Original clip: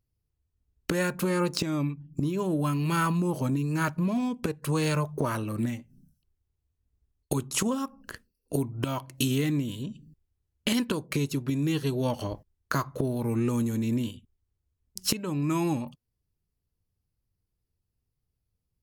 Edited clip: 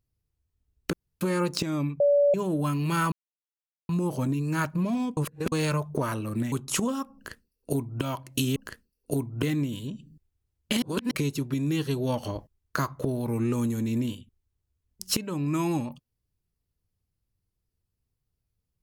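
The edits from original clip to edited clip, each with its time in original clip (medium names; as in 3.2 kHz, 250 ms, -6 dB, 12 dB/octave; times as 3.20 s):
0.93–1.21 s: room tone
2.00–2.34 s: bleep 574 Hz -17 dBFS
3.12 s: insert silence 0.77 s
4.40–4.75 s: reverse
5.75–7.35 s: delete
7.98–8.85 s: copy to 9.39 s
10.78–11.07 s: reverse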